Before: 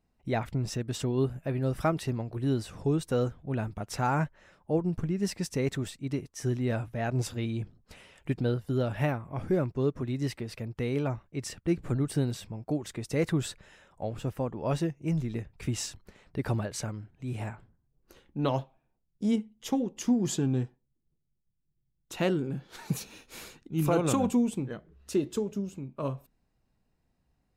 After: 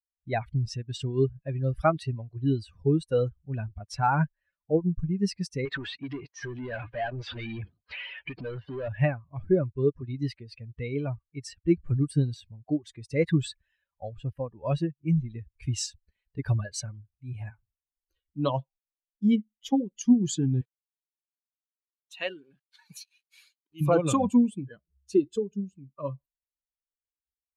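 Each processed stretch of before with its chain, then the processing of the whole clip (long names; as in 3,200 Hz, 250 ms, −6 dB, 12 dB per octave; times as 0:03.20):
0:05.65–0:08.88: downward compressor 10 to 1, threshold −33 dBFS + mid-hump overdrive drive 29 dB, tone 2,900 Hz, clips at −24 dBFS + high-frequency loss of the air 93 metres
0:15.50–0:17.31: running median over 3 samples + high-shelf EQ 7,100 Hz +7 dB
0:20.61–0:23.81: high-pass filter 780 Hz 6 dB per octave + centre clipping without the shift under −50.5 dBFS
whole clip: spectral dynamics exaggerated over time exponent 2; Chebyshev low-pass filter 7,700 Hz, order 2; high-shelf EQ 6,400 Hz −7 dB; level +8.5 dB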